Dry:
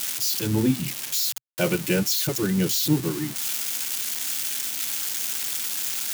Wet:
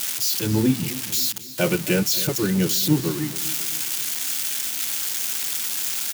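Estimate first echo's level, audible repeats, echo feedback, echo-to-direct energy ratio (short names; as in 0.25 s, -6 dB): -16.0 dB, 3, 47%, -15.0 dB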